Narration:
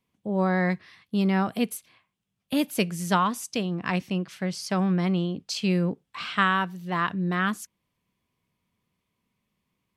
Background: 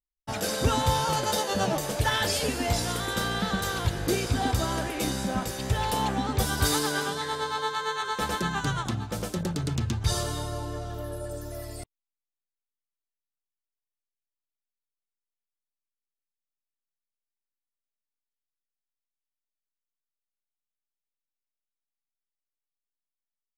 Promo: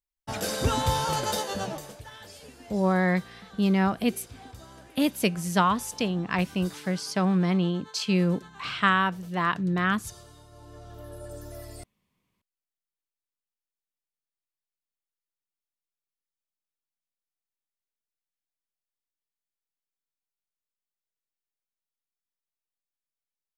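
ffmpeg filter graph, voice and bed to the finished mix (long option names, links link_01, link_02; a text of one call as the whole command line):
ffmpeg -i stem1.wav -i stem2.wav -filter_complex "[0:a]adelay=2450,volume=0.5dB[link_01];[1:a]volume=15dB,afade=type=out:start_time=1.27:duration=0.75:silence=0.112202,afade=type=in:start_time=10.5:duration=0.92:silence=0.158489[link_02];[link_01][link_02]amix=inputs=2:normalize=0" out.wav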